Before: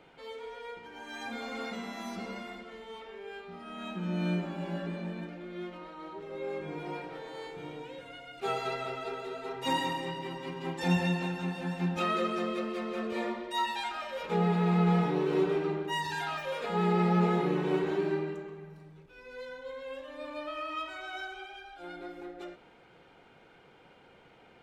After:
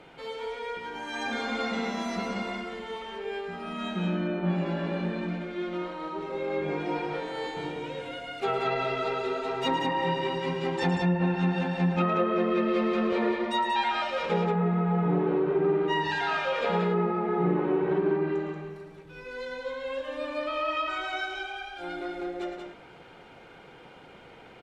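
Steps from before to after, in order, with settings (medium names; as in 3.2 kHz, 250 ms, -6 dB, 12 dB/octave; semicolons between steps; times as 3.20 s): low-pass that closes with the level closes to 1.6 kHz, closed at -26.5 dBFS; compression, threshold -30 dBFS, peak gain reduction 8.5 dB; loudspeakers at several distances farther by 38 m -9 dB, 63 m -5 dB; trim +6.5 dB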